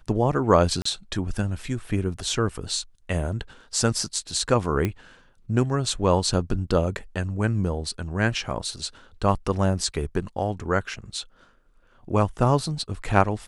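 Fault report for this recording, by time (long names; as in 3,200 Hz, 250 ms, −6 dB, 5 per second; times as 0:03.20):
0:00.82–0:00.85: drop-out 34 ms
0:04.85: click −12 dBFS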